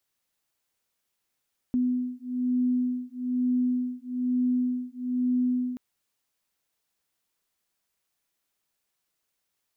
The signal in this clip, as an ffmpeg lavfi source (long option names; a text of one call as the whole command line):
ffmpeg -f lavfi -i "aevalsrc='0.0447*(sin(2*PI*249*t)+sin(2*PI*250.1*t))':duration=4.03:sample_rate=44100" out.wav